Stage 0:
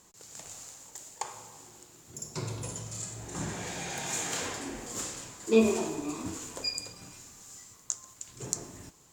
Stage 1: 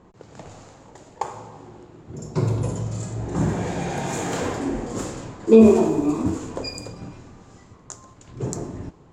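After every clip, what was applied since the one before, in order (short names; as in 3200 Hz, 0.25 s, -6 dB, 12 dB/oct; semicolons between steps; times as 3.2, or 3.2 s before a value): low-pass opened by the level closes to 2800 Hz, open at -31.5 dBFS; tilt shelf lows +9 dB, about 1400 Hz; maximiser +7.5 dB; gain -1 dB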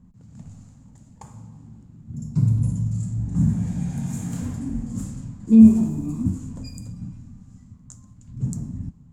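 EQ curve 240 Hz 0 dB, 360 Hz -26 dB, 1200 Hz -21 dB, 3600 Hz -20 dB, 5700 Hz -15 dB, 10000 Hz -4 dB; gain +4 dB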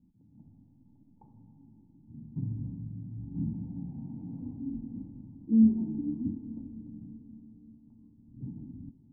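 vocal tract filter u; reverb RT60 5.5 s, pre-delay 0.115 s, DRR 13 dB; gain -2.5 dB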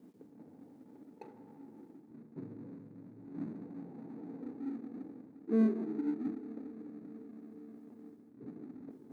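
median filter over 41 samples; reverse; upward compressor, threshold -37 dBFS; reverse; resonant high-pass 440 Hz, resonance Q 4.9; gain +2 dB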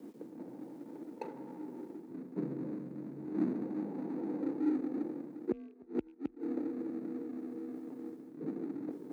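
rattling part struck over -36 dBFS, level -38 dBFS; flipped gate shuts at -28 dBFS, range -31 dB; frequency shift +29 Hz; gain +8.5 dB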